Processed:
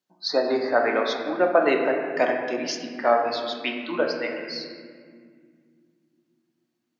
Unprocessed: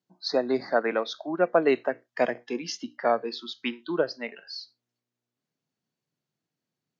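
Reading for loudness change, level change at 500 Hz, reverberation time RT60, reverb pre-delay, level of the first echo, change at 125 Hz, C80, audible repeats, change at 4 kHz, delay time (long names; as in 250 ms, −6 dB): +3.5 dB, +3.5 dB, 2.1 s, 3 ms, no echo audible, −1.0 dB, 5.0 dB, no echo audible, +4.0 dB, no echo audible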